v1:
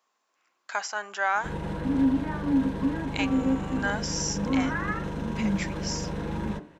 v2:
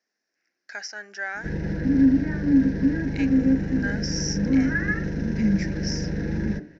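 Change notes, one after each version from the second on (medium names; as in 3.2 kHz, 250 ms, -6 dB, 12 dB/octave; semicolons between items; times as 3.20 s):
background +5.5 dB; master: add FFT filter 320 Hz 0 dB, 760 Hz -10 dB, 1.1 kHz -24 dB, 1.7 kHz +3 dB, 3.3 kHz -15 dB, 5.5 kHz +4 dB, 8.2 kHz -24 dB, 15 kHz -18 dB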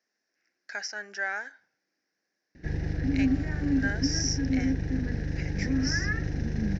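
background: entry +1.20 s; reverb: off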